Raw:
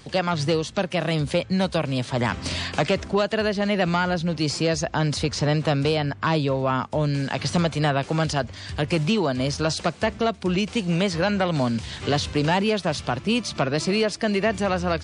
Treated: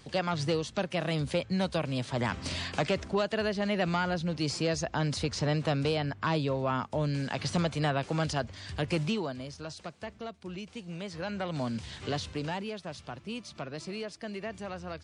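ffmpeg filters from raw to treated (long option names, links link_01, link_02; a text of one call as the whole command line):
ffmpeg -i in.wav -af "volume=2dB,afade=type=out:start_time=8.98:duration=0.48:silence=0.298538,afade=type=in:start_time=11:duration=0.86:silence=0.354813,afade=type=out:start_time=11.86:duration=0.86:silence=0.421697" out.wav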